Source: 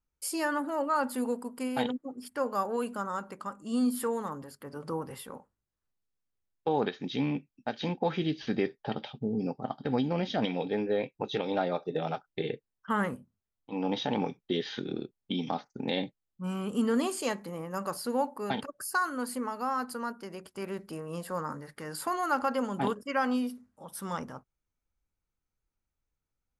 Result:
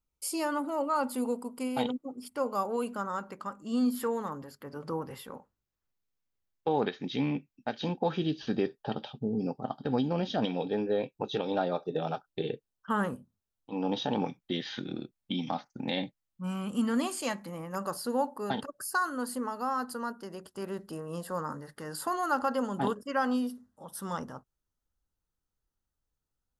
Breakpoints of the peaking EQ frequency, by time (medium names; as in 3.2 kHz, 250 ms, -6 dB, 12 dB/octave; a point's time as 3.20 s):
peaking EQ -13.5 dB 0.25 oct
1.7 kHz
from 2.88 s 9.2 kHz
from 7.78 s 2.1 kHz
from 14.25 s 420 Hz
from 17.75 s 2.3 kHz